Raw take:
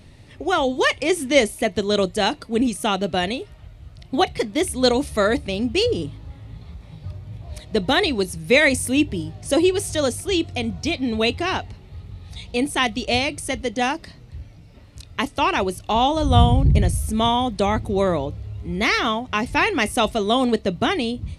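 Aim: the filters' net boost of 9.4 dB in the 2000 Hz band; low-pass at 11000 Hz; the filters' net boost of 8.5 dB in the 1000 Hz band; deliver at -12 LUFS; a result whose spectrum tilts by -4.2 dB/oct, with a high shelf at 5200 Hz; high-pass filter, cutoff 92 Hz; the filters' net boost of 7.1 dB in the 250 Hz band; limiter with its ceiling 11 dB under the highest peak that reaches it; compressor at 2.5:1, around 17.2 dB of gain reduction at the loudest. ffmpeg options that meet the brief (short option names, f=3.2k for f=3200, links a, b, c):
-af "highpass=92,lowpass=11k,equalizer=f=250:t=o:g=8,equalizer=f=1k:t=o:g=8.5,equalizer=f=2k:t=o:g=7.5,highshelf=f=5.2k:g=8.5,acompressor=threshold=-31dB:ratio=2.5,volume=18.5dB,alimiter=limit=-1.5dB:level=0:latency=1"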